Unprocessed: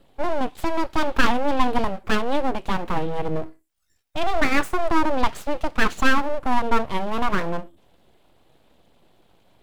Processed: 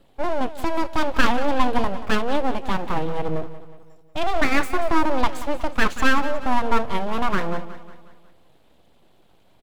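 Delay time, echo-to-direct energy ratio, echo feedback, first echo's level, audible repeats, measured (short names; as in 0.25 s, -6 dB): 0.182 s, -13.0 dB, 49%, -14.0 dB, 4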